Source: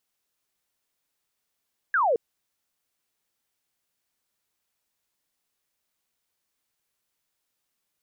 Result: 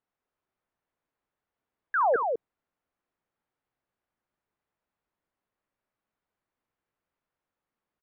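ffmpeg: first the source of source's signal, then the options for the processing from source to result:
-f lavfi -i "aevalsrc='0.112*clip(t/0.002,0,1)*clip((0.22-t)/0.002,0,1)*sin(2*PI*1700*0.22/log(430/1700)*(exp(log(430/1700)*t/0.22)-1))':d=0.22:s=44100"
-af "lowpass=1500,aecho=1:1:66|197:0.119|0.562"

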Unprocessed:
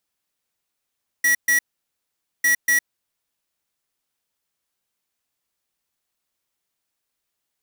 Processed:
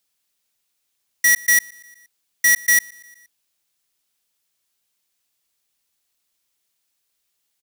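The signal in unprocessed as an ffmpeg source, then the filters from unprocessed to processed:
-f lavfi -i "aevalsrc='0.141*(2*lt(mod(1930*t,1),0.5)-1)*clip(min(mod(mod(t,1.2),0.24),0.11-mod(mod(t,1.2),0.24))/0.005,0,1)*lt(mod(t,1.2),0.48)':d=2.4:s=44100"
-filter_complex "[0:a]acrossover=split=580|2400[s0][s1][s2];[s2]acontrast=78[s3];[s0][s1][s3]amix=inputs=3:normalize=0,aecho=1:1:118|236|354|472:0.0708|0.0411|0.0238|0.0138"

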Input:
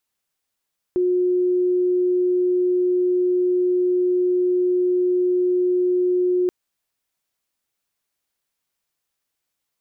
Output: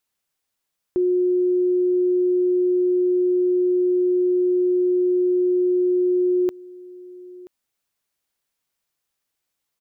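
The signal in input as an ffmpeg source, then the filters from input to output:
-f lavfi -i "aevalsrc='0.158*sin(2*PI*361*t)':d=5.53:s=44100"
-af "aecho=1:1:980:0.0891"

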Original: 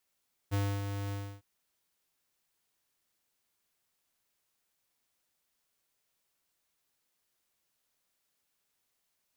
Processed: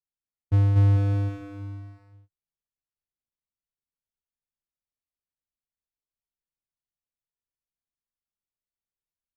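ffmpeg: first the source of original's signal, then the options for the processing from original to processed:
-f lavfi -i "aevalsrc='0.0355*(2*lt(mod(100*t,1),0.5)-1)':d=0.905:s=44100,afade=t=in:d=0.029,afade=t=out:st=0.029:d=0.274:silence=0.447,afade=t=out:st=0.61:d=0.295"
-filter_complex "[0:a]aemphasis=mode=reproduction:type=riaa,agate=range=0.0631:threshold=0.0178:ratio=16:detection=peak,asplit=2[s0][s1];[s1]aecho=0:1:240|444|617.4|764.8|890.1:0.631|0.398|0.251|0.158|0.1[s2];[s0][s2]amix=inputs=2:normalize=0"

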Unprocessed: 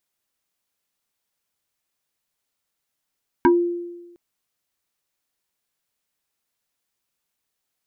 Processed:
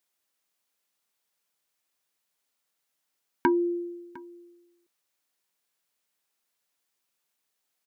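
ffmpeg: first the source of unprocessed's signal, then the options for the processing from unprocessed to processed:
-f lavfi -i "aevalsrc='0.335*pow(10,-3*t/1.15)*sin(2*PI*347*t+1.9*pow(10,-3*t/0.17)*sin(2*PI*1.78*347*t))':d=0.71:s=44100"
-af "highpass=f=260:p=1,acompressor=threshold=0.0708:ratio=2,aecho=1:1:705:0.0794"

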